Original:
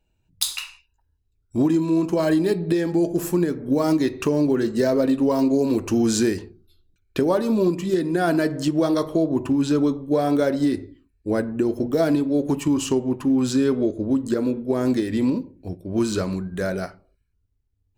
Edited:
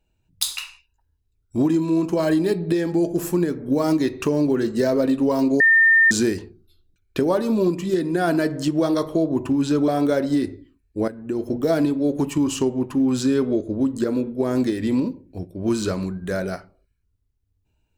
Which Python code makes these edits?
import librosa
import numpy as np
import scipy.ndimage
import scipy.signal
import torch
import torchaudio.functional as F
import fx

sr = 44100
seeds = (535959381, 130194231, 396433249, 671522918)

y = fx.edit(x, sr, fx.bleep(start_s=5.6, length_s=0.51, hz=1810.0, db=-11.0),
    fx.cut(start_s=9.88, length_s=0.3),
    fx.fade_in_from(start_s=11.38, length_s=0.47, floor_db=-15.0), tone=tone)